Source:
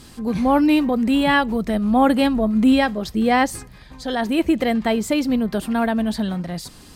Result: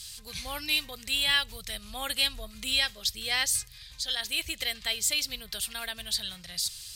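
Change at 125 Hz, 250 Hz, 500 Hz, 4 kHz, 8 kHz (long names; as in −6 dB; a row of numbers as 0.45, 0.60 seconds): −17.5, −31.5, −23.0, +4.5, +6.5 decibels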